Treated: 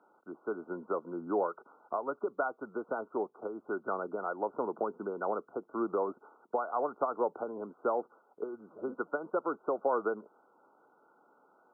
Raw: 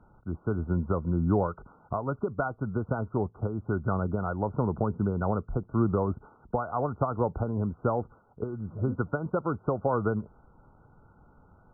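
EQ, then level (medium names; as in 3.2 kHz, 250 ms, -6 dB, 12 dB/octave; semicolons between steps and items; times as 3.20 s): high-pass 320 Hz 24 dB/octave; -2.0 dB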